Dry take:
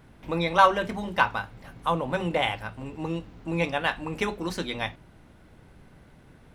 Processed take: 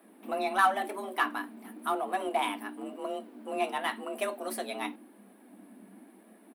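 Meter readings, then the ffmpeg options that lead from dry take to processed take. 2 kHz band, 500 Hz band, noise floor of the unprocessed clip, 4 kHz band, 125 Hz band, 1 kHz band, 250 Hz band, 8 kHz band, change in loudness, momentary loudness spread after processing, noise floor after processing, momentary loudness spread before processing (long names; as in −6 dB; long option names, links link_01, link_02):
−5.5 dB, −5.0 dB, −54 dBFS, −7.0 dB, below −25 dB, −4.0 dB, −6.5 dB, +1.5 dB, −5.0 dB, 13 LU, −58 dBFS, 14 LU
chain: -filter_complex "[0:a]firequalizer=gain_entry='entry(120,0);entry(180,-8);entry(320,-10);entry(460,-1);entry(920,-7);entry(1300,-6);entry(6300,-13);entry(9000,8)':delay=0.05:min_phase=1,afreqshift=190,flanger=delay=1.6:depth=3.2:regen=-51:speed=0.95:shape=sinusoidal,asplit=2[link_01][link_02];[link_02]asoftclip=type=hard:threshold=-33dB,volume=-11dB[link_03];[link_01][link_03]amix=inputs=2:normalize=0,volume=2.5dB"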